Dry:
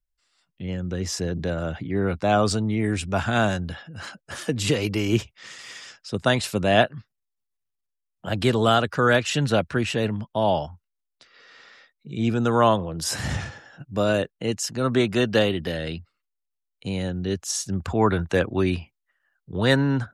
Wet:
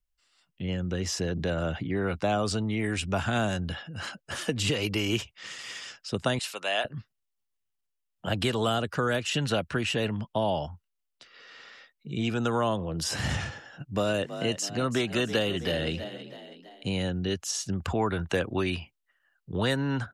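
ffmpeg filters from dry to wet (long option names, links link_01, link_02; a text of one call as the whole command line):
ffmpeg -i in.wav -filter_complex "[0:a]asettb=1/sr,asplit=3[link_01][link_02][link_03];[link_01]atrim=end=6.394[link_04];[link_02]atrim=start=6.39:end=6.85,asetpts=PTS-STARTPTS,afade=type=in:duration=0.004:curve=qsin,afade=type=out:start_time=0.456:duration=0.004:curve=qsin,highpass=980[link_05];[link_03]atrim=start=6.846[link_06];[link_04][link_05]acrossfade=duration=0.004:curve1=hsin:curve2=qsin[link_07];[link_07][link_06]acrossfade=duration=0.004:curve1=qsin:curve2=hsin,asplit=3[link_08][link_09][link_10];[link_08]afade=type=out:start_time=13.96:duration=0.02[link_11];[link_09]asplit=5[link_12][link_13][link_14][link_15][link_16];[link_13]adelay=325,afreqshift=45,volume=-14.5dB[link_17];[link_14]adelay=650,afreqshift=90,volume=-21.1dB[link_18];[link_15]adelay=975,afreqshift=135,volume=-27.6dB[link_19];[link_16]adelay=1300,afreqshift=180,volume=-34.2dB[link_20];[link_12][link_17][link_18][link_19][link_20]amix=inputs=5:normalize=0,afade=type=in:start_time=13.96:duration=0.02,afade=type=out:start_time=16.94:duration=0.02[link_21];[link_10]afade=type=in:start_time=16.94:duration=0.02[link_22];[link_11][link_21][link_22]amix=inputs=3:normalize=0,acrossover=split=600|6700[link_23][link_24][link_25];[link_23]acompressor=threshold=-27dB:ratio=4[link_26];[link_24]acompressor=threshold=-30dB:ratio=4[link_27];[link_25]acompressor=threshold=-41dB:ratio=4[link_28];[link_26][link_27][link_28]amix=inputs=3:normalize=0,equalizer=frequency=2900:width_type=o:width=0.22:gain=5" out.wav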